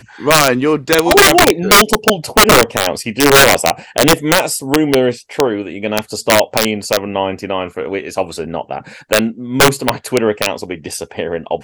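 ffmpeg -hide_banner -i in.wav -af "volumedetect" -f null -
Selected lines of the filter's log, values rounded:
mean_volume: -13.8 dB
max_volume: -1.6 dB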